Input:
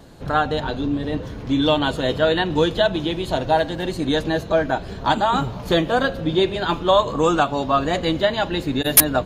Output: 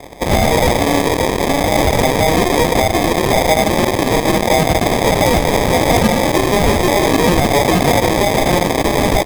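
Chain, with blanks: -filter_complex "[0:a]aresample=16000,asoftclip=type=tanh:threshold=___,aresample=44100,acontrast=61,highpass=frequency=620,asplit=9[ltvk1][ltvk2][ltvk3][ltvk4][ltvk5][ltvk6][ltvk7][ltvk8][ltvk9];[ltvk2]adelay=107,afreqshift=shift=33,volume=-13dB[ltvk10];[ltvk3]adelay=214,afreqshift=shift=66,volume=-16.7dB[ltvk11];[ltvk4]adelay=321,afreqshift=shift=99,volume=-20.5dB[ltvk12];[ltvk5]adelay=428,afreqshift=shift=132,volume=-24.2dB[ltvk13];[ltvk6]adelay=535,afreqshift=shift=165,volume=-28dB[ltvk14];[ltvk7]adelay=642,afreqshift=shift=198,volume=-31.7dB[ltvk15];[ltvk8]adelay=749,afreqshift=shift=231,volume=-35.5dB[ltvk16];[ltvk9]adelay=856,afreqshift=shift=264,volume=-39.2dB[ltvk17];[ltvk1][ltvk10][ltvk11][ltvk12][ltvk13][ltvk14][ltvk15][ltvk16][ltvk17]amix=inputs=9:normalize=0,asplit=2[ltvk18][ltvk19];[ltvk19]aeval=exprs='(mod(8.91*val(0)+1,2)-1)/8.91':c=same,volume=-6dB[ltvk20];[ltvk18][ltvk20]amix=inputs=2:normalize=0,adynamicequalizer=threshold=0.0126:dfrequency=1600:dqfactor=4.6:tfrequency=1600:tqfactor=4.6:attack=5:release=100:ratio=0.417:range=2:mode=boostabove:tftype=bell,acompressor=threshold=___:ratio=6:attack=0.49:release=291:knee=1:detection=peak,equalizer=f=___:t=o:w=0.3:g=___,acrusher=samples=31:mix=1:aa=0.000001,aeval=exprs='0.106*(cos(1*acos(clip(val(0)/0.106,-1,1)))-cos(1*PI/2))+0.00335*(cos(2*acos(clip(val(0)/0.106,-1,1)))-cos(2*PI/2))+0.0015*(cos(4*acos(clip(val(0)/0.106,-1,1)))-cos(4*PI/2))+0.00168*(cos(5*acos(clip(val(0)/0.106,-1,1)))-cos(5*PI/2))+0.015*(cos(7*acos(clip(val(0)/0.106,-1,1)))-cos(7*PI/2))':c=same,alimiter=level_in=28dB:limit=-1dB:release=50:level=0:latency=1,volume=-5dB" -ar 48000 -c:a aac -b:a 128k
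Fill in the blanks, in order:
-23.5dB, -23dB, 5100, -11.5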